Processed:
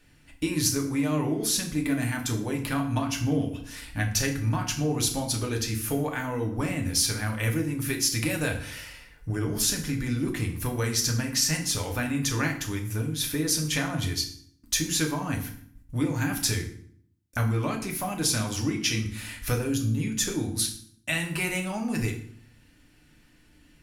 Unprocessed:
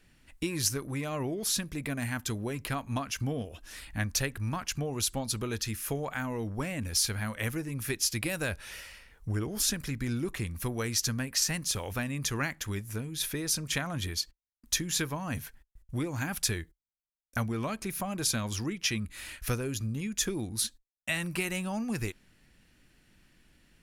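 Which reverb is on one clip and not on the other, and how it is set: FDN reverb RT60 0.57 s, low-frequency decay 1.5×, high-frequency decay 0.85×, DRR 1 dB; trim +1.5 dB

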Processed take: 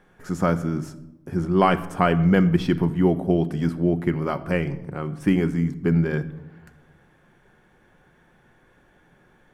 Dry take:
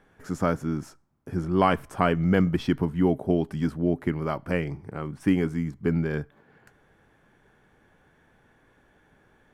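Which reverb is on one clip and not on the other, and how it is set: simulated room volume 3500 m³, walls furnished, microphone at 0.94 m; trim +2.5 dB

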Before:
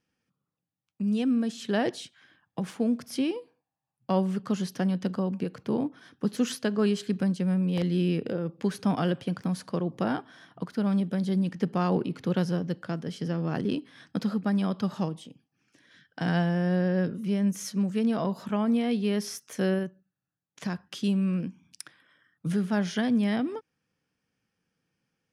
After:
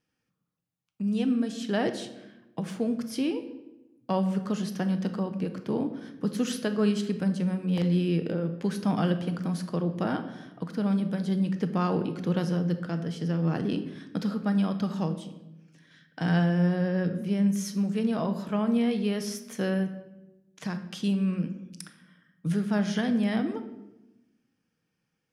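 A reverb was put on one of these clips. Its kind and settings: simulated room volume 440 m³, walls mixed, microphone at 0.52 m; trim -1 dB

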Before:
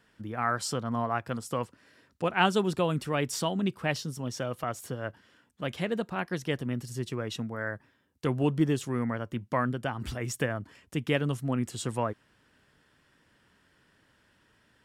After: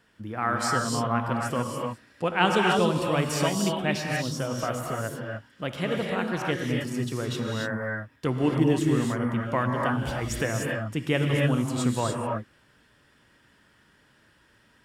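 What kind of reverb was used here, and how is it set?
gated-style reverb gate 320 ms rising, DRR -0.5 dB; trim +1.5 dB

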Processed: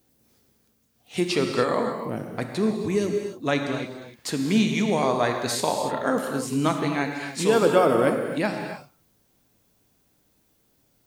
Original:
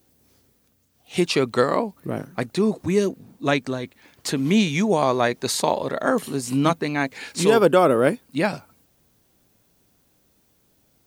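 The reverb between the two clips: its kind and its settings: gated-style reverb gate 320 ms flat, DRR 3.5 dB; trim -4 dB

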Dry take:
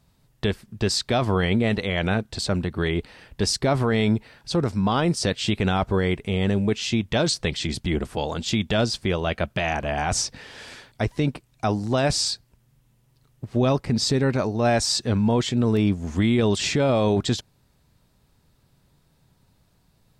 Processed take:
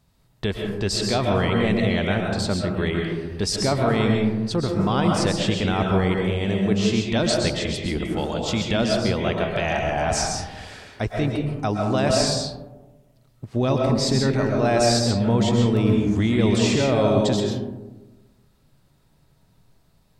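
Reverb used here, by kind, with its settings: algorithmic reverb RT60 1.2 s, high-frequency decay 0.3×, pre-delay 90 ms, DRR 0.5 dB; trim -1.5 dB

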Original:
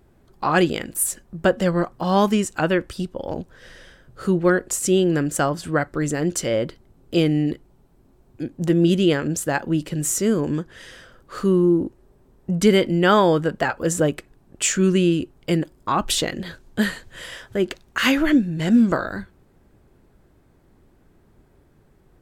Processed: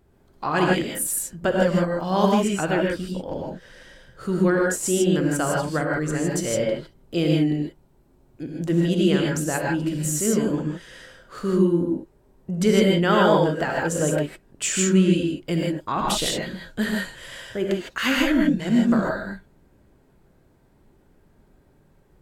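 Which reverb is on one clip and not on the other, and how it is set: gated-style reverb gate 180 ms rising, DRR -1.5 dB; trim -5 dB

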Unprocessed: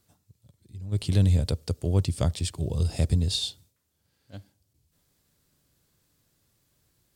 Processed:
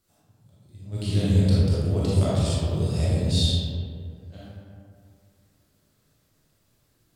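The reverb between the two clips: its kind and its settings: algorithmic reverb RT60 2.3 s, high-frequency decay 0.45×, pre-delay 0 ms, DRR -9.5 dB; trim -5.5 dB

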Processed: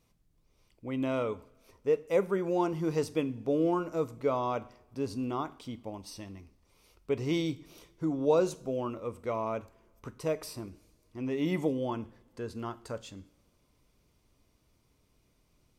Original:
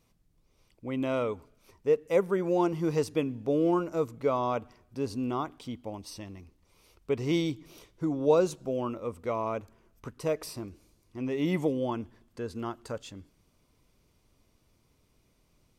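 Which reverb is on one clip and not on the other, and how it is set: two-slope reverb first 0.46 s, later 3 s, from -27 dB, DRR 13 dB; trim -2 dB

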